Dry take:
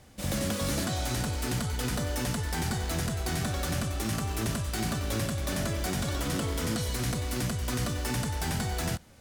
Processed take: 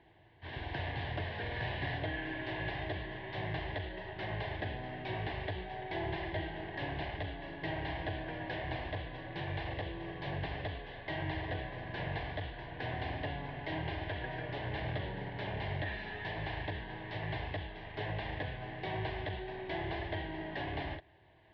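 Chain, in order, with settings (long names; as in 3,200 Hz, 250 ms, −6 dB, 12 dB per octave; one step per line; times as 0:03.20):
loudspeaker in its box 320–6,400 Hz, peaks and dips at 530 Hz +4 dB, 1,200 Hz −10 dB, 4,000 Hz +9 dB, 5,800 Hz −9 dB
phaser with its sweep stopped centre 1,300 Hz, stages 4
wrong playback speed 78 rpm record played at 33 rpm
level +2.5 dB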